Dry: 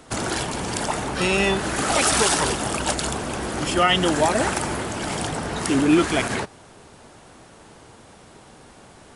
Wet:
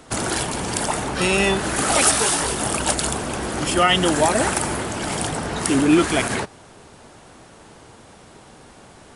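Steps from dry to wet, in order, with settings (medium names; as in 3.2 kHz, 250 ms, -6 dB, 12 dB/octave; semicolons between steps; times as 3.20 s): dynamic bell 9.7 kHz, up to +6 dB, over -41 dBFS, Q 1.8; 2.11–2.55 s: detune thickener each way 28 cents -> 17 cents; trim +1.5 dB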